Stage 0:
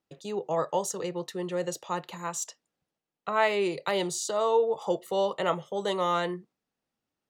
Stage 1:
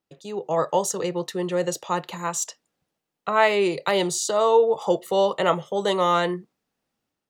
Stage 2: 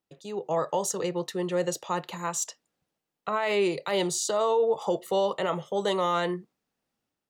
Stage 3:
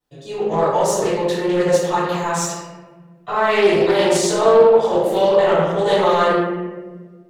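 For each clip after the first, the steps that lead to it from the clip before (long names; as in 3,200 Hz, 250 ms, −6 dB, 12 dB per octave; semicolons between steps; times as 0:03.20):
automatic gain control gain up to 6.5 dB
brickwall limiter −14 dBFS, peak gain reduction 9.5 dB; level −3 dB
in parallel at −7 dB: soft clipping −32 dBFS, distortion −6 dB; on the sum: convolution reverb RT60 1.4 s, pre-delay 3 ms, DRR −17.5 dB; highs frequency-modulated by the lows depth 0.18 ms; level −11 dB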